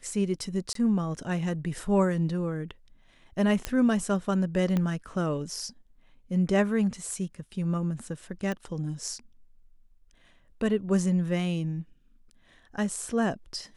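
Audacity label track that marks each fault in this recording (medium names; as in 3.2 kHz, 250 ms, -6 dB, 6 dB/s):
0.730000	0.750000	dropout 23 ms
3.650000	3.650000	pop -13 dBFS
4.770000	4.770000	pop -16 dBFS
8.520000	8.520000	pop -20 dBFS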